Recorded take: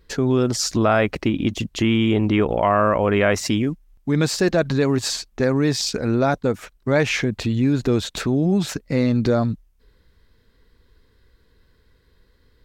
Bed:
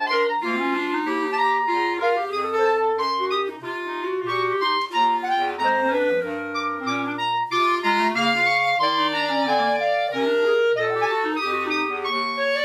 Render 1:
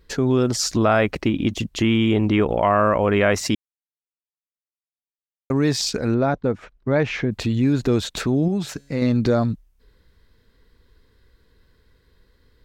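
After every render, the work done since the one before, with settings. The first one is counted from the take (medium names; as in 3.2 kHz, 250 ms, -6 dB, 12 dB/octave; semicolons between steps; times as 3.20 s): 3.55–5.50 s: mute; 6.14–7.31 s: tape spacing loss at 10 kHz 22 dB; 8.48–9.02 s: feedback comb 140 Hz, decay 1.8 s, mix 40%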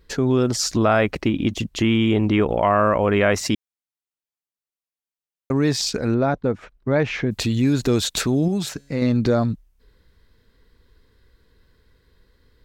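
7.26–8.69 s: treble shelf 3.9 kHz +10.5 dB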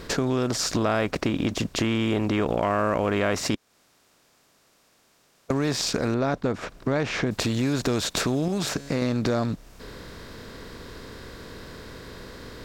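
spectral levelling over time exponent 0.6; compression 2:1, threshold -27 dBFS, peak gain reduction 9 dB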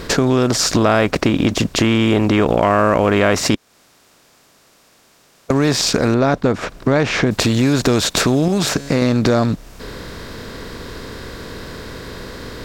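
trim +9.5 dB; peak limiter -2 dBFS, peak gain reduction 1.5 dB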